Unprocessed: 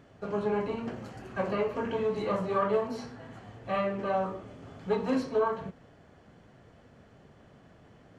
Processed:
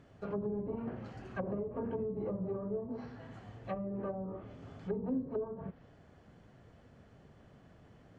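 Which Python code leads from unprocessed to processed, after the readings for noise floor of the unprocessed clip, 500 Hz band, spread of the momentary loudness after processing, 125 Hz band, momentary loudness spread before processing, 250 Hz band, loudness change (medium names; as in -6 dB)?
-58 dBFS, -8.5 dB, 12 LU, -2.5 dB, 16 LU, -4.0 dB, -8.5 dB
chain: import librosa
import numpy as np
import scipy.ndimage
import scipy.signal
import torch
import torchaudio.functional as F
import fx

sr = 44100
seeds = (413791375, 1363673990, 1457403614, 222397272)

y = fx.low_shelf(x, sr, hz=160.0, db=5.5)
y = 10.0 ** (-16.5 / 20.0) * np.tanh(y / 10.0 ** (-16.5 / 20.0))
y = fx.env_lowpass_down(y, sr, base_hz=360.0, full_db=-25.5)
y = F.gain(torch.from_numpy(y), -5.0).numpy()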